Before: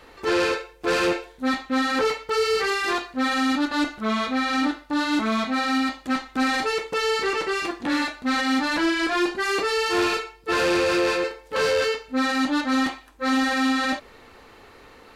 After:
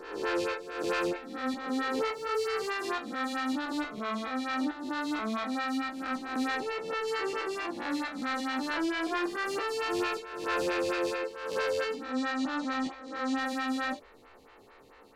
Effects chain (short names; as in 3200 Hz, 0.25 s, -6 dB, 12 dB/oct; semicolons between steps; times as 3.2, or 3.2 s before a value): spectral swells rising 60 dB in 0.95 s; 6.57–7.08 high shelf 5500 Hz -8 dB; 12.04–13.38 LPF 8000 Hz 24 dB/oct; photocell phaser 4.5 Hz; gain -7.5 dB